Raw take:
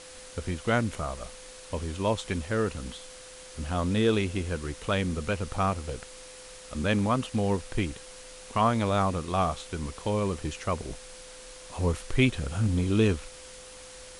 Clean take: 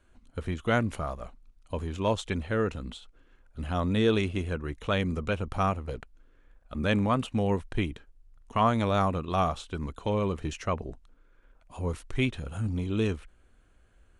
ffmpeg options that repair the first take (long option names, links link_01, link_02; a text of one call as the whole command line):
ffmpeg -i in.wav -af "bandreject=frequency=510:width=30,afwtdn=0.0056,asetnsamples=nb_out_samples=441:pad=0,asendcmd='10.9 volume volume -4.5dB',volume=0dB" out.wav